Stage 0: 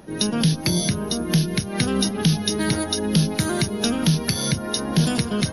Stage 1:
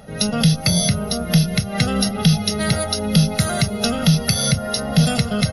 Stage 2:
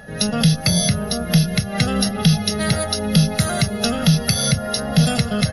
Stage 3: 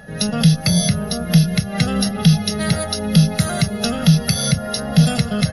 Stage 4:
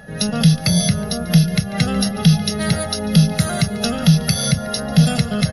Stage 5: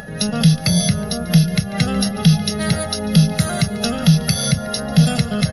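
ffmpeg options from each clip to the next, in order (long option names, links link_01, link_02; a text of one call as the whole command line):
ffmpeg -i in.wav -af "aecho=1:1:1.5:0.9,volume=1.5dB" out.wav
ffmpeg -i in.wav -af "aeval=exprs='val(0)+0.00794*sin(2*PI*1700*n/s)':channel_layout=same" out.wav
ffmpeg -i in.wav -af "equalizer=frequency=170:width=3.2:gain=4.5,volume=-1dB" out.wav
ffmpeg -i in.wav -af "aecho=1:1:143:0.0944" out.wav
ffmpeg -i in.wav -af "acompressor=mode=upward:threshold=-29dB:ratio=2.5" out.wav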